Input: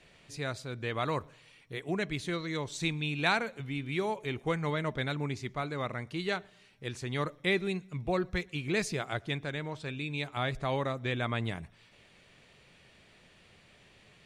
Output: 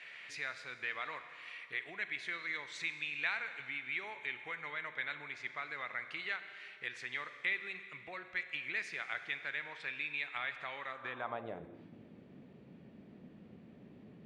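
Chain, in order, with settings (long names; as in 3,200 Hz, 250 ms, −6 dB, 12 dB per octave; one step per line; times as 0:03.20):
downward compressor 4 to 1, threshold −45 dBFS, peak gain reduction 18.5 dB
four-comb reverb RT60 2.3 s, combs from 32 ms, DRR 9.5 dB
band-pass filter sweep 2,000 Hz → 240 Hz, 0:10.87–0:11.94
level +14.5 dB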